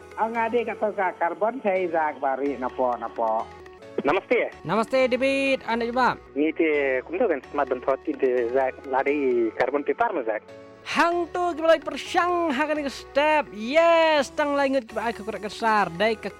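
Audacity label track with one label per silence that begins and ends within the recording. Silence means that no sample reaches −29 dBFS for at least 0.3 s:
3.430000	3.980000	silence
10.380000	10.870000	silence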